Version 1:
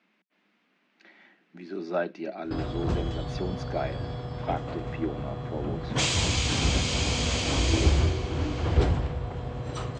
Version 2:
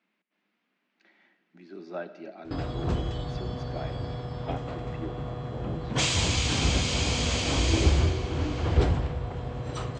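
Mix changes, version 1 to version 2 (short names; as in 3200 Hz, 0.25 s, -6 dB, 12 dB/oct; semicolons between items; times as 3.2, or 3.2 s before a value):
speech -8.5 dB; reverb: on, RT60 1.5 s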